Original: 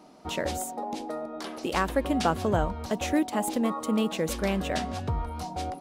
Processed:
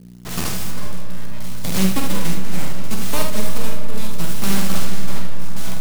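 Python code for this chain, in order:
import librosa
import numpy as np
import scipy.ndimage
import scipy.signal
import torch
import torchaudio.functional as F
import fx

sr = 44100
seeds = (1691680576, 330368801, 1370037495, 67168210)

p1 = fx.envelope_flatten(x, sr, power=0.3)
p2 = fx.peak_eq(p1, sr, hz=1900.0, db=-3.5, octaves=0.77)
p3 = fx.rider(p2, sr, range_db=3, speed_s=2.0)
p4 = p2 + (p3 * librosa.db_to_amplitude(2.0))
p5 = np.abs(p4)
p6 = fx.tremolo_shape(p5, sr, shape='triangle', hz=0.71, depth_pct=80)
p7 = fx.dmg_buzz(p6, sr, base_hz=60.0, harmonics=4, level_db=-38.0, tilt_db=-4, odd_only=False)
p8 = p7 + fx.room_early_taps(p7, sr, ms=(47, 74), db=(-5.5, -6.0), dry=0)
p9 = np.sign(p8) * np.maximum(np.abs(p8) - 10.0 ** (-36.0 / 20.0), 0.0)
p10 = fx.peak_eq(p9, sr, hz=180.0, db=14.5, octaves=0.89)
p11 = fx.rev_freeverb(p10, sr, rt60_s=4.3, hf_ratio=0.5, predelay_ms=90, drr_db=7.0)
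y = p11 * librosa.db_to_amplitude(-2.5)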